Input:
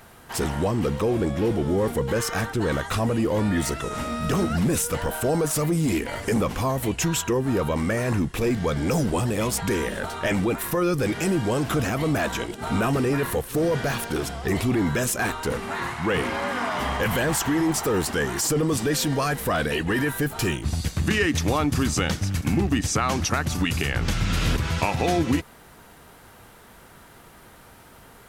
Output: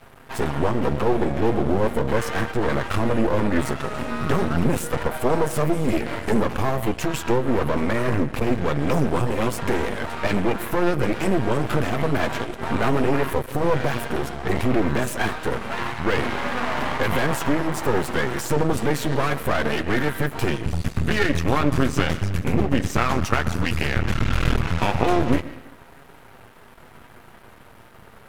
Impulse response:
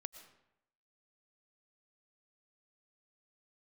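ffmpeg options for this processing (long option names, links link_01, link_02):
-filter_complex "[0:a]flanger=delay=7.3:depth=1.9:regen=-33:speed=0.23:shape=triangular,asplit=2[link_01][link_02];[1:a]atrim=start_sample=2205,lowpass=3000[link_03];[link_02][link_03]afir=irnorm=-1:irlink=0,volume=8.5dB[link_04];[link_01][link_04]amix=inputs=2:normalize=0,aeval=exprs='max(val(0),0)':channel_layout=same,volume=1.5dB"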